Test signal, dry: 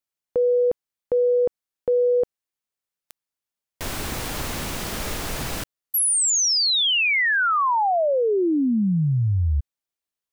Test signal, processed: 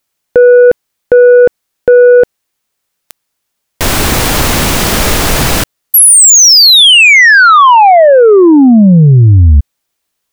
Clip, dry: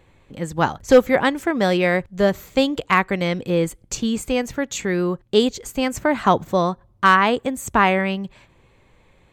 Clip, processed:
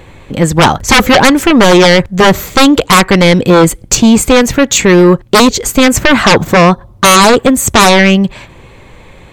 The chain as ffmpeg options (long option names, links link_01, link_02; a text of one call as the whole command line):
ffmpeg -i in.wav -af "aeval=exprs='0.668*sin(PI/2*4.47*val(0)/0.668)':channel_layout=same,volume=2.5dB" out.wav